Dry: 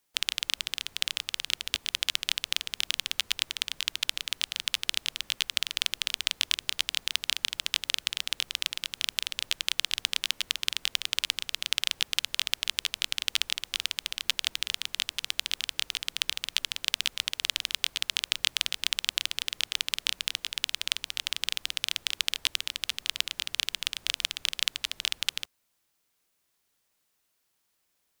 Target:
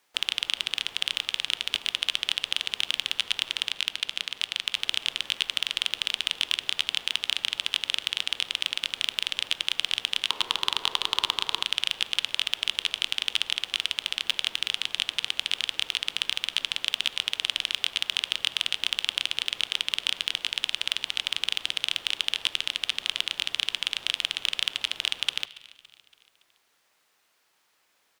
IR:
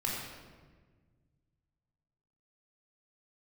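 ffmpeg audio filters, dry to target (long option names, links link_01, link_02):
-filter_complex "[0:a]asettb=1/sr,asplit=3[link_01][link_02][link_03];[link_01]atrim=end=3.694[link_04];[link_02]atrim=start=3.69:end=4.76,asetpts=PTS-STARTPTS,afade=type=in:duration=0.004:curve=qsin,afade=type=out:start_time=1.066:duration=0.004:curve=qsin,tremolo=f=190:d=0.824[link_05];[link_03]atrim=start=4.756[link_06];[link_04][link_05]acrossfade=duration=0.004:curve1=hsin:curve2=qsin[link_07];[link_07][link_06]acrossfade=duration=0.004:curve1=qsin:curve2=hsin,asettb=1/sr,asplit=3[link_08][link_09][link_10];[link_08]atrim=end=10.304[link_11];[link_09]atrim=start=10.3:end=11.63,asetpts=PTS-STARTPTS,afade=type=in:duration=0.004:curve=qsin,afade=type=out:start_time=1.326:duration=0.004:curve=qsin,equalizer=frequency=400:width_type=o:width=0.67:gain=10,equalizer=frequency=1000:width_type=o:width=0.67:gain=12,equalizer=frequency=4000:width_type=o:width=0.67:gain=4[link_12];[link_10]atrim=start=11.626[link_13];[link_11][link_12]acrossfade=duration=0.004:curve1=hsin:curve2=qsin[link_14];[link_14][link_13]acrossfade=duration=0.004:curve1=qsin:curve2=hsin,asplit=2[link_15][link_16];[link_16]highpass=frequency=720:poles=1,volume=19dB,asoftclip=type=tanh:threshold=-1.5dB[link_17];[link_15][link_17]amix=inputs=2:normalize=0,lowpass=frequency=2600:poles=1,volume=-6dB,aecho=1:1:282|564|846|1128:0.0944|0.0463|0.0227|0.0111,asplit=2[link_18][link_19];[1:a]atrim=start_sample=2205,lowpass=5300[link_20];[link_19][link_20]afir=irnorm=-1:irlink=0,volume=-20.5dB[link_21];[link_18][link_21]amix=inputs=2:normalize=0"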